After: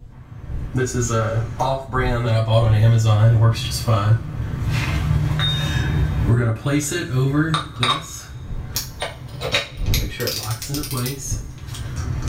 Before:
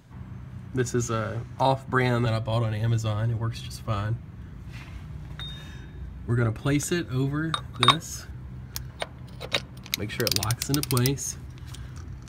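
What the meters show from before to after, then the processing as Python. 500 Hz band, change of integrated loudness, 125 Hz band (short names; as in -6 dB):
+5.5 dB, +6.5 dB, +9.5 dB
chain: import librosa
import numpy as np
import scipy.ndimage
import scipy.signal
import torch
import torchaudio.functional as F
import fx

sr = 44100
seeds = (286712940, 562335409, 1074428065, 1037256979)

y = fx.recorder_agc(x, sr, target_db=-7.5, rise_db_per_s=17.0, max_gain_db=30)
y = fx.dmg_wind(y, sr, seeds[0], corner_hz=90.0, level_db=-28.0)
y = fx.rev_double_slope(y, sr, seeds[1], early_s=0.29, late_s=1.9, knee_db=-27, drr_db=-5.0)
y = y * 10.0 ** (-7.5 / 20.0)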